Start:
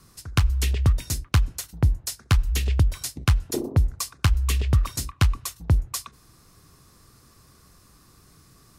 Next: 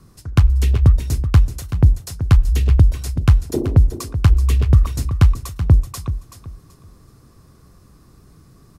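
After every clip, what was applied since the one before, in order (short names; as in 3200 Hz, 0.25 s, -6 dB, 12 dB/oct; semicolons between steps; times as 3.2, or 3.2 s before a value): tilt shelf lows +6 dB; on a send: feedback echo 0.38 s, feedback 26%, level -11.5 dB; on the sum: gain +2 dB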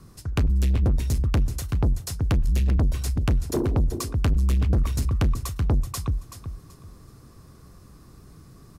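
soft clip -17.5 dBFS, distortion -6 dB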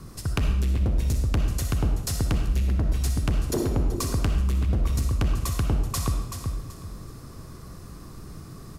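compressor, threshold -30 dBFS, peak gain reduction 10.5 dB; on a send at -3.5 dB: reverb RT60 0.85 s, pre-delay 20 ms; on the sum: gain +6 dB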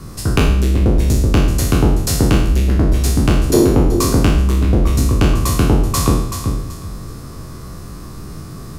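spectral trails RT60 0.67 s; dynamic EQ 340 Hz, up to +6 dB, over -40 dBFS, Q 1; gain +8 dB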